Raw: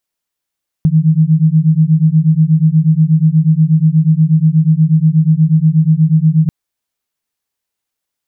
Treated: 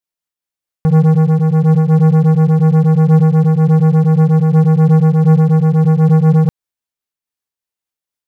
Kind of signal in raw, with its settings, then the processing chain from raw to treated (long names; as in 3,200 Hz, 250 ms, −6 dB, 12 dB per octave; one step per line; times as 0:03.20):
two tones that beat 154 Hz, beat 8.3 Hz, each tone −10 dBFS 5.64 s
leveller curve on the samples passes 3
amplitude modulation by smooth noise, depth 50%